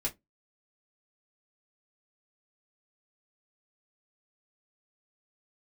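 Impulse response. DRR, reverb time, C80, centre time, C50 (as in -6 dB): -3.0 dB, 0.15 s, 33.0 dB, 11 ms, 21.5 dB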